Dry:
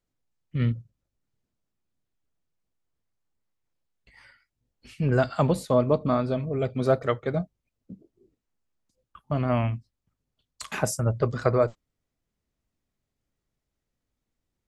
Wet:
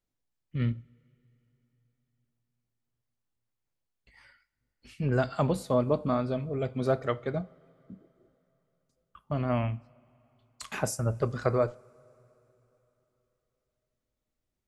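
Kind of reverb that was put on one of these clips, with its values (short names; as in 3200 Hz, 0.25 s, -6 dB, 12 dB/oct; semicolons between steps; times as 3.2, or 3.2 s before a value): two-slope reverb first 0.33 s, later 3.7 s, from -22 dB, DRR 14.5 dB; gain -4 dB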